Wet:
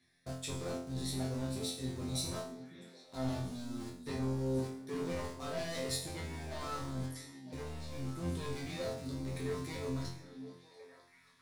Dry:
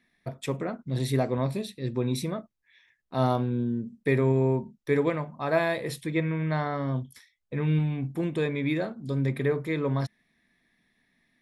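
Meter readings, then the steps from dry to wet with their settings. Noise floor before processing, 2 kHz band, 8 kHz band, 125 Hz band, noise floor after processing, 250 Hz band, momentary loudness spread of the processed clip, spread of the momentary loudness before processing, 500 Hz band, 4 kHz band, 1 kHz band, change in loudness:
-73 dBFS, -13.5 dB, +2.5 dB, -12.0 dB, -63 dBFS, -10.5 dB, 12 LU, 8 LU, -12.5 dB, -1.0 dB, -12.0 dB, -11.0 dB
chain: octaver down 1 oct, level +2 dB; in parallel at -8 dB: bit-crush 6-bit; on the sum: hard clip -13.5 dBFS, distortion -20 dB; reverse; compressor, threshold -27 dBFS, peak gain reduction 11 dB; reverse; low shelf 75 Hz -9 dB; soft clip -31.5 dBFS, distortion -11 dB; band shelf 6400 Hz +9.5 dB; resonator bank F2 fifth, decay 0.57 s; delay with a stepping band-pass 0.477 s, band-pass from 240 Hz, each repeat 1.4 oct, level -7 dB; gain +11 dB

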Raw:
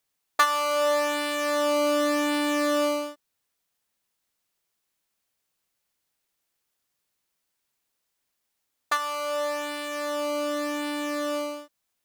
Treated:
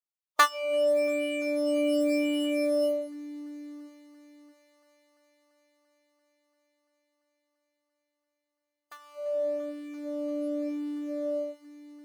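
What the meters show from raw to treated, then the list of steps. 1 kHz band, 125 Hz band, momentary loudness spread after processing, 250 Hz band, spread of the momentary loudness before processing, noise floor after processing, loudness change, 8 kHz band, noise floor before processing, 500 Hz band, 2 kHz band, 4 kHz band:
-6.5 dB, n/a, 16 LU, -0.5 dB, 8 LU, -85 dBFS, -2.5 dB, -8.5 dB, -79 dBFS, -1.0 dB, -5.5 dB, -7.0 dB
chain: multi-head echo 0.341 s, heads all three, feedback 64%, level -14.5 dB; spectral noise reduction 23 dB

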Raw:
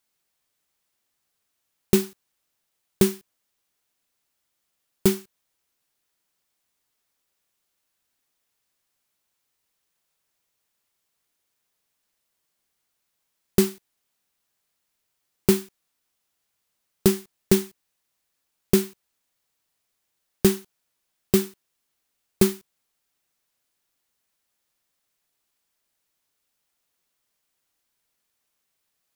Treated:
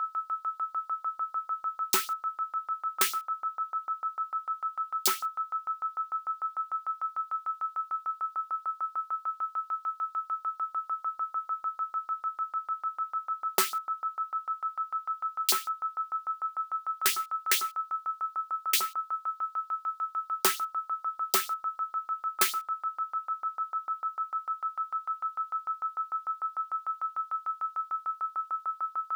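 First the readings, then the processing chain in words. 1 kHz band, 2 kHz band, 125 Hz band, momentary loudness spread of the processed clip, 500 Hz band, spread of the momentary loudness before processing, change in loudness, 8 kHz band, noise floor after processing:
+20.5 dB, +3.5 dB, under -30 dB, 7 LU, -18.0 dB, 13 LU, -7.5 dB, +1.0 dB, -55 dBFS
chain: whine 1300 Hz -33 dBFS; LFO high-pass saw up 6.7 Hz 820–5100 Hz

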